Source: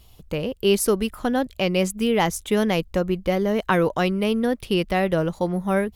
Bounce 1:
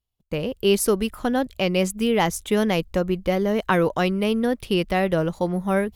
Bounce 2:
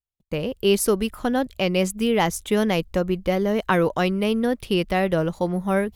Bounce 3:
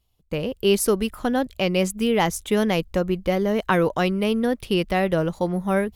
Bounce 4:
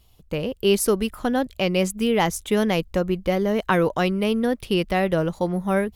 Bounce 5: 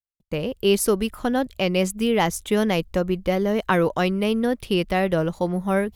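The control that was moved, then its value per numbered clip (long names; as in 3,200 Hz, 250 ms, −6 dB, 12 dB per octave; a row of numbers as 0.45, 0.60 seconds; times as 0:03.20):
noise gate, range: −33, −46, −19, −6, −58 decibels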